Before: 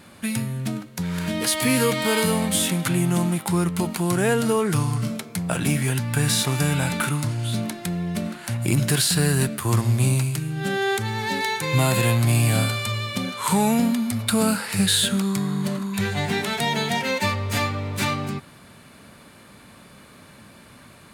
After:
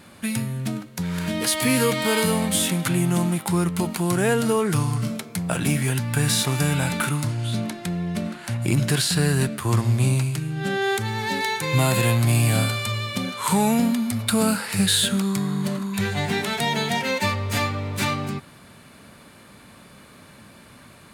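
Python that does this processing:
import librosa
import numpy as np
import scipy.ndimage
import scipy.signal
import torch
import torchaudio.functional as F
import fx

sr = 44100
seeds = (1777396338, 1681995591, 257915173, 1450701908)

y = fx.high_shelf(x, sr, hz=10000.0, db=-8.5, at=(7.31, 10.84))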